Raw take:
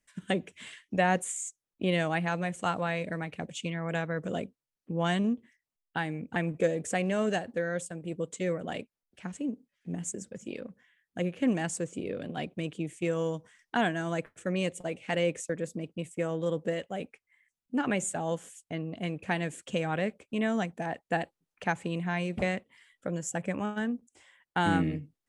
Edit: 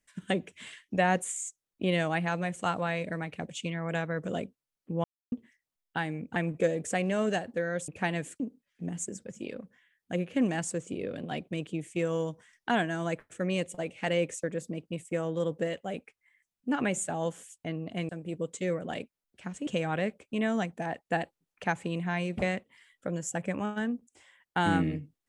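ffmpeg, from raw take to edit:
ffmpeg -i in.wav -filter_complex "[0:a]asplit=7[link_01][link_02][link_03][link_04][link_05][link_06][link_07];[link_01]atrim=end=5.04,asetpts=PTS-STARTPTS,afade=type=out:start_time=5.036:duration=0.004:curve=hsin[link_08];[link_02]atrim=start=5.04:end=5.32,asetpts=PTS-STARTPTS,volume=0[link_09];[link_03]atrim=start=5.32:end=7.882,asetpts=PTS-STARTPTS,afade=type=in:duration=0.004:curve=hsin[link_10];[link_04]atrim=start=19.148:end=19.672[link_11];[link_05]atrim=start=9.458:end=19.152[link_12];[link_06]atrim=start=7.878:end=9.462[link_13];[link_07]atrim=start=19.668[link_14];[link_08][link_09][link_10]concat=n=3:v=0:a=1[link_15];[link_15][link_11]acrossfade=duration=0.004:curve1=hsin:curve2=hsin[link_16];[link_16][link_12]acrossfade=duration=0.004:curve1=hsin:curve2=hsin[link_17];[link_17][link_13]acrossfade=duration=0.004:curve1=hsin:curve2=hsin[link_18];[link_18][link_14]acrossfade=duration=0.004:curve1=hsin:curve2=hsin" out.wav

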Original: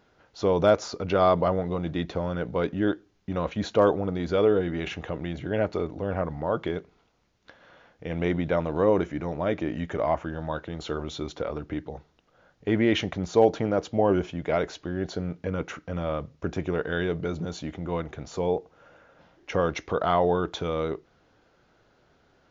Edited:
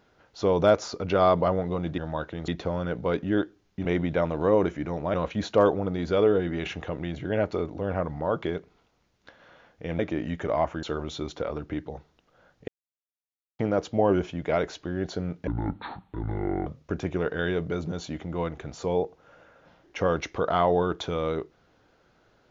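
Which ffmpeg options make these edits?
ffmpeg -i in.wav -filter_complex "[0:a]asplit=11[link_01][link_02][link_03][link_04][link_05][link_06][link_07][link_08][link_09][link_10][link_11];[link_01]atrim=end=1.982[link_12];[link_02]atrim=start=10.328:end=10.832[link_13];[link_03]atrim=start=1.978:end=3.352[link_14];[link_04]atrim=start=8.198:end=9.492[link_15];[link_05]atrim=start=3.348:end=8.202[link_16];[link_06]atrim=start=9.488:end=10.332[link_17];[link_07]atrim=start=10.828:end=12.68,asetpts=PTS-STARTPTS,afade=type=out:start_time=1.848:duration=0.004:curve=hsin[link_18];[link_08]atrim=start=12.68:end=13.59,asetpts=PTS-STARTPTS,volume=0[link_19];[link_09]atrim=start=13.59:end=15.474,asetpts=PTS-STARTPTS,afade=type=in:duration=0.004:curve=hsin[link_20];[link_10]atrim=start=15.47:end=16.2,asetpts=PTS-STARTPTS,asetrate=26901,aresample=44100,atrim=end_sample=52775,asetpts=PTS-STARTPTS[link_21];[link_11]atrim=start=16.196[link_22];[link_12][link_13]acrossfade=duration=0.004:curve1=hsin:curve2=hsin[link_23];[link_23][link_14]acrossfade=duration=0.004:curve1=hsin:curve2=hsin[link_24];[link_24][link_15]acrossfade=duration=0.004:curve1=hsin:curve2=hsin[link_25];[link_25][link_16]acrossfade=duration=0.004:curve1=hsin:curve2=hsin[link_26];[link_26][link_17]acrossfade=duration=0.004:curve1=hsin:curve2=hsin[link_27];[link_18][link_19][link_20]concat=n=3:v=0:a=1[link_28];[link_27][link_28]acrossfade=duration=0.004:curve1=hsin:curve2=hsin[link_29];[link_29][link_21]acrossfade=duration=0.004:curve1=hsin:curve2=hsin[link_30];[link_30][link_22]acrossfade=duration=0.004:curve1=hsin:curve2=hsin" out.wav

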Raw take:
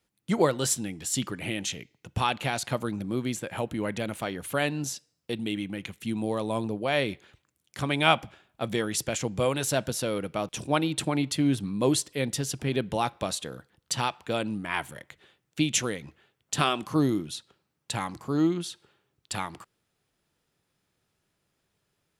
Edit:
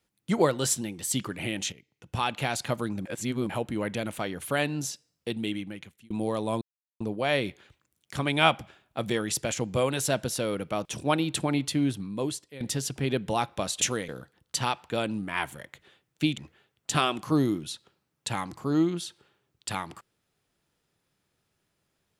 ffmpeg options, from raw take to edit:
ffmpeg -i in.wav -filter_complex "[0:a]asplit=12[link_01][link_02][link_03][link_04][link_05][link_06][link_07][link_08][link_09][link_10][link_11][link_12];[link_01]atrim=end=0.814[link_13];[link_02]atrim=start=0.81:end=1.16,asetpts=PTS-STARTPTS,asetrate=47628,aresample=44100[link_14];[link_03]atrim=start=1.156:end=1.75,asetpts=PTS-STARTPTS,afade=type=out:start_time=0.59:duration=0.004:curve=hsin:silence=0.199526[link_15];[link_04]atrim=start=1.75:end=3.082,asetpts=PTS-STARTPTS,afade=type=in:duration=0.69:silence=0.199526[link_16];[link_05]atrim=start=3.078:end=3.522,asetpts=PTS-STARTPTS,areverse[link_17];[link_06]atrim=start=3.518:end=6.13,asetpts=PTS-STARTPTS,afade=type=out:start_time=1.982:duration=0.63[link_18];[link_07]atrim=start=6.13:end=6.64,asetpts=PTS-STARTPTS,afade=type=in:duration=0.004:curve=hsin,afade=type=out:start_time=0.506:duration=0.004:curve=hsin,apad=pad_dur=0.39[link_19];[link_08]atrim=start=6.64:end=12.24,asetpts=PTS-STARTPTS,afade=type=in:duration=0.004:curve=hsin,afade=type=out:start_time=4.63:duration=0.97:silence=0.149624[link_20];[link_09]atrim=start=12.24:end=13.452,asetpts=PTS-STARTPTS,afade=type=in:duration=0.004:curve=hsin:silence=0.149624[link_21];[link_10]atrim=start=15.738:end=16.012[link_22];[link_11]atrim=start=13.448:end=15.742[link_23];[link_12]atrim=start=16.008[link_24];[link_13][link_14]acrossfade=duration=0.004:curve1=hsin:curve2=hsin[link_25];[link_15][link_16]concat=n=2:v=0:a=1[link_26];[link_25][link_26]acrossfade=duration=0.004:curve1=hsin:curve2=hsin[link_27];[link_27][link_17]acrossfade=duration=0.004:curve1=hsin:curve2=hsin[link_28];[link_18][link_19][link_20][link_21]concat=n=4:v=0:a=1[link_29];[link_28][link_29]acrossfade=duration=0.004:curve1=hsin:curve2=hsin[link_30];[link_30][link_22]acrossfade=duration=0.004:curve1=hsin:curve2=hsin[link_31];[link_31][link_23]acrossfade=duration=0.004:curve1=hsin:curve2=hsin[link_32];[link_32][link_24]acrossfade=duration=0.004:curve1=hsin:curve2=hsin" out.wav

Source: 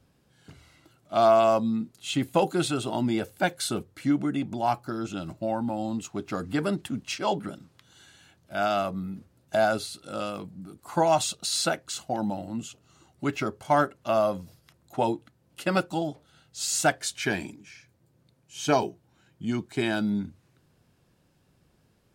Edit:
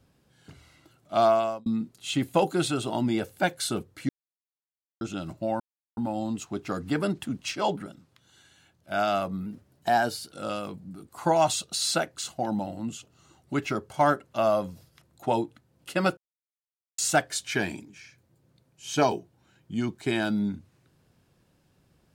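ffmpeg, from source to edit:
ffmpeg -i in.wav -filter_complex "[0:a]asplit=11[link_01][link_02][link_03][link_04][link_05][link_06][link_07][link_08][link_09][link_10][link_11];[link_01]atrim=end=1.66,asetpts=PTS-STARTPTS,afade=type=out:start_time=1.2:duration=0.46[link_12];[link_02]atrim=start=1.66:end=4.09,asetpts=PTS-STARTPTS,afade=type=in:duration=0.004:curve=hsin,afade=type=out:start_time=2.426:duration=0.004:curve=hsin[link_13];[link_03]atrim=start=4.09:end=5.01,asetpts=PTS-STARTPTS,volume=0[link_14];[link_04]atrim=start=5.01:end=5.6,asetpts=PTS-STARTPTS,afade=type=in:duration=0.004:curve=hsin,afade=type=out:start_time=0.586:duration=0.004:curve=hsin,apad=pad_dur=0.37[link_15];[link_05]atrim=start=5.6:end=7.452,asetpts=PTS-STARTPTS,afade=type=in:duration=0.004:curve=hsin[link_16];[link_06]atrim=start=7.448:end=8.542,asetpts=PTS-STARTPTS,volume=-4dB[link_17];[link_07]atrim=start=8.538:end=9.094[link_18];[link_08]atrim=start=9.09:end=10.03,asetpts=PTS-STARTPTS,asetrate=48069,aresample=44100,atrim=end_sample=38031,asetpts=PTS-STARTPTS[link_19];[link_09]atrim=start=10.026:end=15.88,asetpts=PTS-STARTPTS,afade=type=out:start_time=5.85:duration=0.004:curve=hsin[link_20];[link_10]atrim=start=15.88:end=16.69,asetpts=PTS-STARTPTS,volume=0[link_21];[link_11]atrim=start=16.69,asetpts=PTS-STARTPTS,afade=type=in:duration=0.004:curve=hsin[link_22];[link_12][link_13][link_14][link_15][link_16]concat=n=5:v=0:a=1[link_23];[link_23][link_17]acrossfade=duration=0.004:curve1=hsin:curve2=hsin[link_24];[link_24][link_18]acrossfade=duration=0.004:curve1=hsin:curve2=hsin[link_25];[link_25][link_19]acrossfade=duration=0.004:curve1=hsin:curve2=hsin[link_26];[link_20][link_21][link_22]concat=n=3:v=0:a=1[link_27];[link_26][link_27]acrossfade=duration=0.004:curve1=hsin:curve2=hsin" out.wav

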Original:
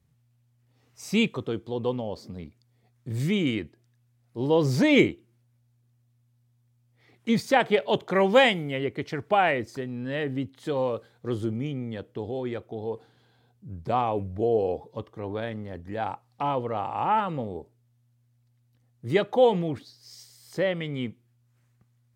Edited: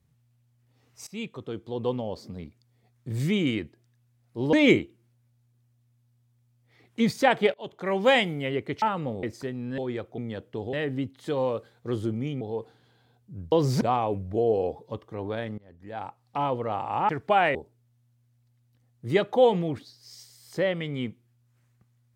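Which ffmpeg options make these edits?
ffmpeg -i in.wav -filter_complex "[0:a]asplit=15[link_01][link_02][link_03][link_04][link_05][link_06][link_07][link_08][link_09][link_10][link_11][link_12][link_13][link_14][link_15];[link_01]atrim=end=1.07,asetpts=PTS-STARTPTS,afade=type=out:start_time=1.066:duration=0.004:curve=hsin:silence=0.0944061[link_16];[link_02]atrim=start=1.07:end=4.532,asetpts=PTS-STARTPTS,afade=type=in:duration=0.84:silence=0.0944061[link_17];[link_03]atrim=start=4.818:end=7.83,asetpts=PTS-STARTPTS,afade=type=out:start_time=3.008:duration=0.004:curve=hsin:silence=0.0707946[link_18];[link_04]atrim=start=7.83:end=9.112,asetpts=PTS-STARTPTS,afade=type=in:duration=0.74:silence=0.0707946[link_19];[link_05]atrim=start=17.138:end=17.552[link_20];[link_06]atrim=start=9.568:end=10.122[link_21];[link_07]atrim=start=12.348:end=12.752[link_22];[link_08]atrim=start=11.798:end=12.352[link_23];[link_09]atrim=start=10.118:end=11.802[link_24];[link_10]atrim=start=12.748:end=13.862[link_25];[link_11]atrim=start=4.528:end=4.822[link_26];[link_12]atrim=start=13.858:end=15.63,asetpts=PTS-STARTPTS,afade=type=out:start_time=1.768:duration=0.004:curve=hsin:silence=0.0707946[link_27];[link_13]atrim=start=15.63:end=17.142,asetpts=PTS-STARTPTS,afade=type=in:duration=0.84:silence=0.0707946[link_28];[link_14]atrim=start=9.108:end=9.572[link_29];[link_15]atrim=start=17.548[link_30];[link_16][link_17]concat=n=2:v=0:a=1[link_31];[link_18][link_19]concat=n=2:v=0:a=1[link_32];[link_31][link_32]acrossfade=duration=0.004:curve1=hsin:curve2=hsin[link_33];[link_33][link_20]acrossfade=duration=0.004:curve1=hsin:curve2=hsin[link_34];[link_34][link_21]acrossfade=duration=0.004:curve1=hsin:curve2=hsin[link_35];[link_35][link_22]acrossfade=duration=0.004:curve1=hsin:curve2=hsin[link_36];[link_36][link_23]acrossfade=duration=0.004:curve1=hsin:curve2=hsin[link_37];[link_37][link_24]acrossfade=duration=0.004:curve1=hsin:curve2=hsin[link_38];[link_38][link_25]acrossfade=duration=0.004:curve1=hsin:curve2=hsin[link_39];[link_39][link_26]acrossfade=duration=0.004:curve1=hsin:curve2=hsin[link_40];[link_27][link_28]concat=n=2:v=0:a=1[link_41];[link_40][link_41]acrossfade=duration=0.004:curve1=hsin:curve2=hsin[link_42];[link_42][link_29]acrossfade=duration=0.004:curve1=hsin:curve2=hsin[link_43];[link_43][link_30]acrossfade=duration=0.004:curve1=hsin:curve2=hsin" out.wav

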